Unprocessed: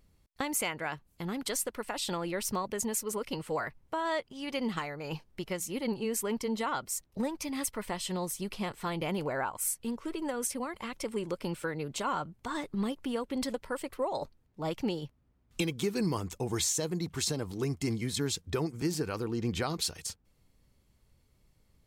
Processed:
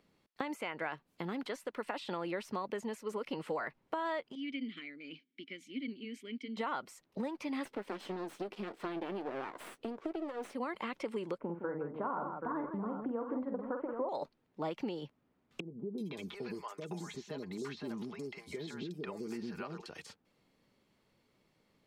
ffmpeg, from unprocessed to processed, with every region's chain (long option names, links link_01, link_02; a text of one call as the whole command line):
ffmpeg -i in.wav -filter_complex "[0:a]asettb=1/sr,asplit=3[link_01][link_02][link_03];[link_01]atrim=end=4.354[link_04];[link_02]atrim=start=4.35:end=6.57,asetpts=PTS-STARTPTS,afade=type=in:duration=0.004:curve=qsin,afade=type=out:start_time=2.216:duration=0.004:curve=qsin,asplit=3[link_05][link_06][link_07];[link_05]bandpass=frequency=270:width_type=q:width=8,volume=0dB[link_08];[link_06]bandpass=frequency=2290:width_type=q:width=8,volume=-6dB[link_09];[link_07]bandpass=frequency=3010:width_type=q:width=8,volume=-9dB[link_10];[link_08][link_09][link_10]amix=inputs=3:normalize=0,highshelf=frequency=3000:gain=9.5[link_11];[link_03]atrim=start=6.566[link_12];[link_04][link_11]acrossfade=duration=0.004:curve1=hsin:curve2=qsin[link_13];[link_13][link_12]acrossfade=duration=0.004:curve1=qsin:curve2=hsin,asettb=1/sr,asplit=3[link_14][link_15][link_16];[link_14]atrim=end=7.654[link_17];[link_15]atrim=start=7.65:end=10.55,asetpts=PTS-STARTPTS,afade=type=in:duration=0.004:curve=qsin,afade=type=out:start_time=2.896:duration=0.004:curve=qsin,equalizer=frequency=340:width_type=o:width=1.3:gain=14,aeval=exprs='max(val(0),0)':channel_layout=same,asplit=2[link_18][link_19];[link_19]adelay=15,volume=-14dB[link_20];[link_18][link_20]amix=inputs=2:normalize=0,atrim=end_sample=127890[link_21];[link_16]atrim=start=10.546[link_22];[link_17][link_21]acrossfade=duration=0.004:curve1=hsin:curve2=qsin[link_23];[link_23][link_22]acrossfade=duration=0.004:curve1=qsin:curve2=hsin,asettb=1/sr,asplit=3[link_24][link_25][link_26];[link_24]atrim=end=11.384[link_27];[link_25]atrim=start=11.38:end=14.09,asetpts=PTS-STARTPTS,afade=type=in:duration=0.004:curve=qsin,afade=type=out:start_time=2.706:duration=0.004:curve=qsin,lowpass=frequency=1300:width=0.5412,lowpass=frequency=1300:width=1.3066,aecho=1:1:47|164|780:0.447|0.335|0.316,atrim=end_sample=119511[link_28];[link_26]atrim=start=14.086[link_29];[link_27][link_28]acrossfade=duration=0.004:curve1=hsin:curve2=qsin[link_30];[link_30][link_29]acrossfade=duration=0.004:curve1=qsin:curve2=hsin,asettb=1/sr,asplit=3[link_31][link_32][link_33];[link_31]atrim=end=15.604[link_34];[link_32]atrim=start=15.6:end=19.86,asetpts=PTS-STARTPTS,afade=type=in:duration=0.004:curve=qsin,afade=type=out:start_time=4.256:duration=0.004:curve=qsin,acompressor=threshold=-36dB:ratio=12:attack=3.2:release=140:knee=1:detection=peak,aecho=1:1:4.9:0.42,atrim=end_sample=187866,acrossover=split=580|4800[link_35][link_36][link_37];[link_37]adelay=380[link_38];[link_36]adelay=510[link_39];[link_35][link_39][link_38]amix=inputs=3:normalize=0,atrim=end_sample=187866[link_40];[link_33]atrim=start=19.856[link_41];[link_34][link_40]acrossfade=duration=0.004:curve1=hsin:curve2=qsin[link_42];[link_42][link_41]acrossfade=duration=0.004:curve1=qsin:curve2=hsin,acompressor=threshold=-36dB:ratio=6,acrossover=split=170 4700:gain=0.0631 1 0.224[link_43][link_44][link_45];[link_43][link_44][link_45]amix=inputs=3:normalize=0,acrossover=split=2900[link_46][link_47];[link_47]acompressor=threshold=-56dB:ratio=4:attack=1:release=60[link_48];[link_46][link_48]amix=inputs=2:normalize=0,volume=3dB" out.wav